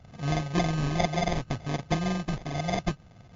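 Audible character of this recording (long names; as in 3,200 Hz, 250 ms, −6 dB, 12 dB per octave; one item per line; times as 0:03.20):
a buzz of ramps at a fixed pitch in blocks of 64 samples
phaser sweep stages 12, 0.66 Hz, lowest notch 460–1,400 Hz
aliases and images of a low sample rate 1,400 Hz, jitter 0%
MP3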